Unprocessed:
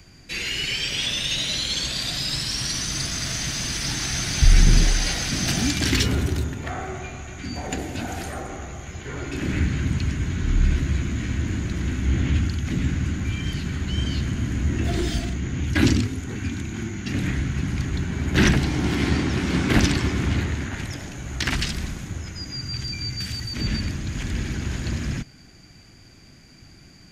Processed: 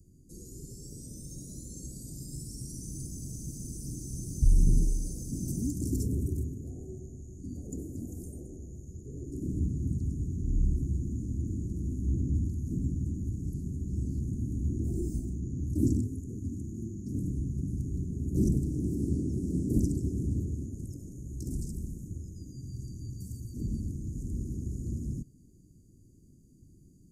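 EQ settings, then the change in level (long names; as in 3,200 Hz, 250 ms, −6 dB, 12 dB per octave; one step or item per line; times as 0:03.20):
inverse Chebyshev band-stop filter 1,000–3,300 Hz, stop band 60 dB
−7.5 dB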